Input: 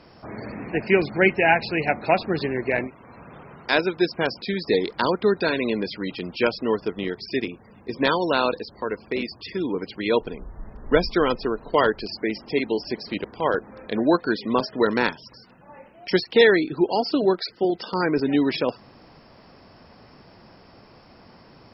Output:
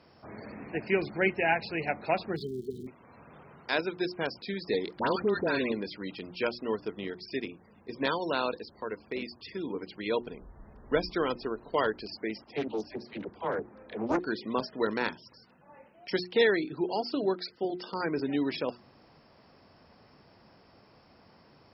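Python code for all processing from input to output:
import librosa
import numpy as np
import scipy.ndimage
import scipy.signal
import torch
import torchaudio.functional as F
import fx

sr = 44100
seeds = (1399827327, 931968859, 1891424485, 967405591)

y = fx.notch_comb(x, sr, f0_hz=300.0, at=(2.35, 2.86), fade=0.02)
y = fx.dmg_crackle(y, sr, seeds[0], per_s=330.0, level_db=-38.0, at=(2.35, 2.86), fade=0.02)
y = fx.brickwall_bandstop(y, sr, low_hz=450.0, high_hz=3000.0, at=(2.35, 2.86), fade=0.02)
y = fx.chain(y, sr, fx.high_shelf(hz=5000.0, db=-11.5),
    fx.dispersion(late='highs', ms=84.0, hz=1500.0),
    fx.env_flatten(amount_pct=50), at=(4.99, 5.72))
y = fx.chain(y, sr, fx.high_shelf(hz=2800.0, db=-10.0),
    fx.dispersion(late='lows', ms=53.0, hz=500.0),
    fx.doppler_dist(depth_ms=0.53), at=(12.44, 14.19))
y = scipy.signal.sosfilt(scipy.signal.butter(2, 42.0, 'highpass', fs=sr, output='sos'), y)
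y = fx.hum_notches(y, sr, base_hz=60, count=6)
y = y * librosa.db_to_amplitude(-8.5)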